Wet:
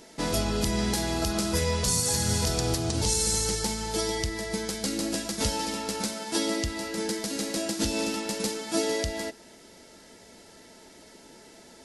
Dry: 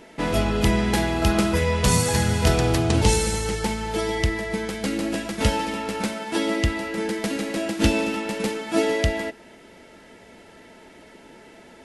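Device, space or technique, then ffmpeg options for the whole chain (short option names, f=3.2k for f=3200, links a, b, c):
over-bright horn tweeter: -af "highshelf=f=3.6k:t=q:w=1.5:g=9,alimiter=limit=-10dB:level=0:latency=1:release=179,volume=-4.5dB"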